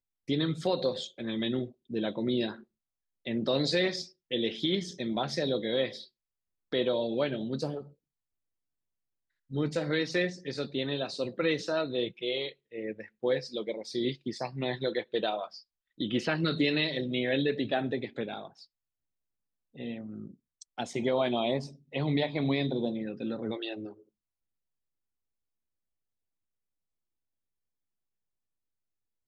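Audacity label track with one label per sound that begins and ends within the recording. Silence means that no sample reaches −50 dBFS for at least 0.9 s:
9.500000	18.650000	sound
19.750000	24.010000	sound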